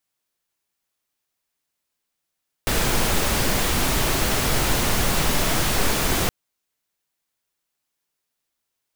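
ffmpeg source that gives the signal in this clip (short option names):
-f lavfi -i "anoisesrc=c=pink:a=0.484:d=3.62:r=44100:seed=1"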